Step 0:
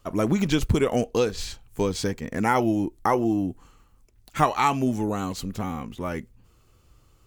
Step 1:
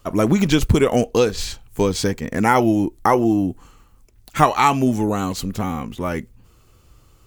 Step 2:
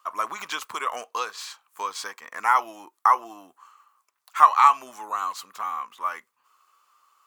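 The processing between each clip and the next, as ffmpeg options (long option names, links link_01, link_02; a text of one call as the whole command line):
ffmpeg -i in.wav -af "highshelf=frequency=11000:gain=3,volume=6dB" out.wav
ffmpeg -i in.wav -af "highpass=frequency=1100:width_type=q:width=5.3,volume=-9dB" out.wav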